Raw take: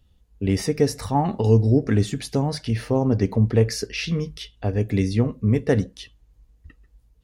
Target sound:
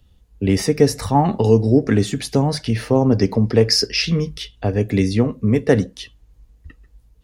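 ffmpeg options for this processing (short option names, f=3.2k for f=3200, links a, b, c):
-filter_complex "[0:a]asettb=1/sr,asplit=3[a][b][c];[a]atrim=end=3.184[d];[b]atrim=start=3.18:end=4.02,asetpts=PTS-STARTPTS,afade=t=in:d=0.004:c=qsin,afade=t=out:st=0.836:d=0.004:c=qsin,equalizer=f=5.1k:w=7.3:g=15[e];[c]atrim=start=4.016[f];[d][e]acrossfade=d=0.004:c1=hsin:c2=qsin[g];[g][f]acrossfade=d=0.004:c1=qsin:c2=hsin,acrossover=split=170|2000[h][i][j];[h]alimiter=limit=-22.5dB:level=0:latency=1:release=425[k];[k][i][j]amix=inputs=3:normalize=0,volume=5.5dB"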